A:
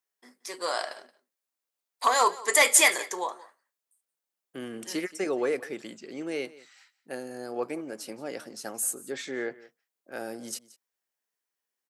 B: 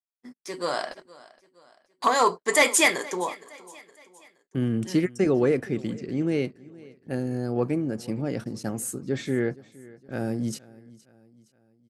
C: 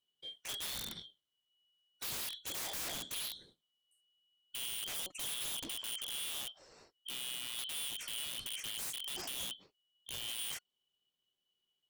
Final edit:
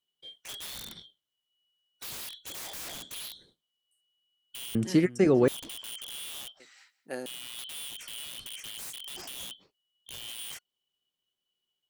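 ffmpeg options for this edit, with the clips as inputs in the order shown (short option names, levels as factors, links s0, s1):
-filter_complex "[2:a]asplit=3[s0][s1][s2];[s0]atrim=end=4.752[s3];[1:a]atrim=start=4.748:end=5.482[s4];[s1]atrim=start=5.478:end=6.602[s5];[0:a]atrim=start=6.598:end=7.262[s6];[s2]atrim=start=7.258[s7];[s3][s4]acrossfade=d=0.004:c1=hsin:c2=hsin[s8];[s8][s5]acrossfade=d=0.004:c1=hsin:c2=hsin[s9];[s9][s6]acrossfade=d=0.004:c1=hsin:c2=hsin[s10];[s10][s7]acrossfade=d=0.004:c1=hsin:c2=hsin"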